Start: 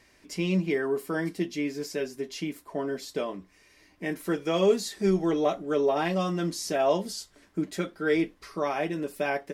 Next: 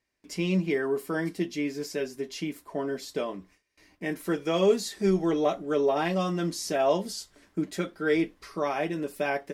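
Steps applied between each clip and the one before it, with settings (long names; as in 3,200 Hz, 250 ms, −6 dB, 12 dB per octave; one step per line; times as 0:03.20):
noise gate with hold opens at −48 dBFS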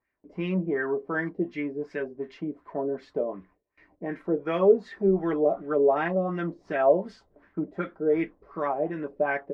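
auto-filter low-pass sine 2.7 Hz 500–2,000 Hz
level −2 dB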